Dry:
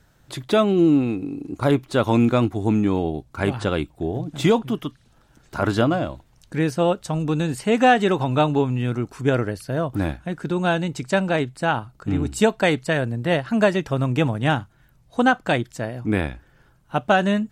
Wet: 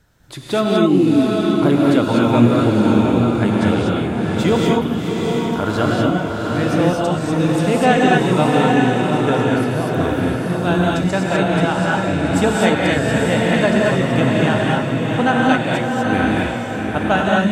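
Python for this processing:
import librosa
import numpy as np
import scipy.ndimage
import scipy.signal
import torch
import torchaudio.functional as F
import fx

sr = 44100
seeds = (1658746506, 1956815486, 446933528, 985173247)

p1 = x + fx.echo_diffused(x, sr, ms=723, feedback_pct=46, wet_db=-3, dry=0)
p2 = fx.rev_gated(p1, sr, seeds[0], gate_ms=270, shape='rising', drr_db=-2.5)
y = p2 * 10.0 ** (-1.0 / 20.0)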